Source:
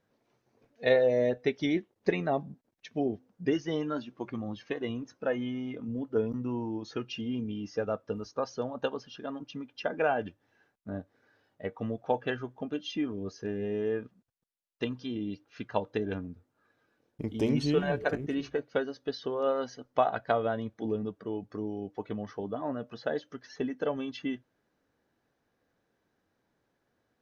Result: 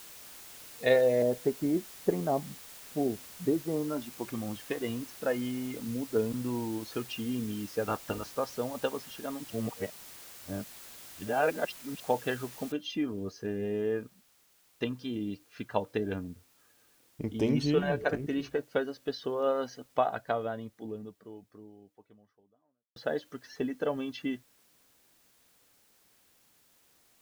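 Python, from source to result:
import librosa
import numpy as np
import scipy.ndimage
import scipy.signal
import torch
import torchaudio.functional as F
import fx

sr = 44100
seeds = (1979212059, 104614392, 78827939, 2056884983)

y = fx.lowpass(x, sr, hz=1200.0, slope=24, at=(1.22, 4.02))
y = fx.spec_clip(y, sr, under_db=20, at=(7.86, 8.31), fade=0.02)
y = fx.noise_floor_step(y, sr, seeds[0], at_s=12.72, before_db=-49, after_db=-66, tilt_db=0.0)
y = fx.edit(y, sr, fx.reverse_span(start_s=9.5, length_s=2.5),
    fx.fade_out_span(start_s=19.73, length_s=3.23, curve='qua'), tone=tone)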